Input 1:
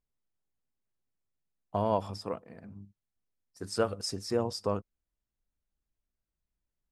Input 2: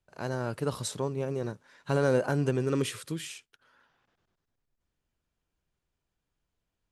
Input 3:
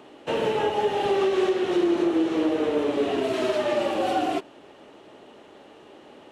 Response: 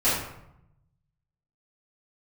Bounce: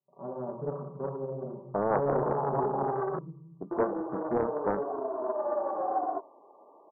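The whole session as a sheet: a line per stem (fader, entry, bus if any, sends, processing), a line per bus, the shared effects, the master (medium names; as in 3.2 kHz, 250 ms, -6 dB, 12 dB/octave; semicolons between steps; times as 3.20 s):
+1.0 dB, 0.00 s, no send, gate with hold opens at -48 dBFS
-10.5 dB, 0.00 s, send -13 dB, comb 5.2 ms, depth 95%; auto duck -13 dB, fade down 0.55 s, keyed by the first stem
0.0 dB, 1.80 s, muted 3.19–3.71 s, no send, flange 1.4 Hz, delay 8.8 ms, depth 5.8 ms, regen -83%; high-pass 390 Hz 12 dB/octave; tilt shelf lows -7 dB, about 650 Hz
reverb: on, RT60 0.80 s, pre-delay 3 ms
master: FFT band-pass 120–1200 Hz; loudspeaker Doppler distortion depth 0.51 ms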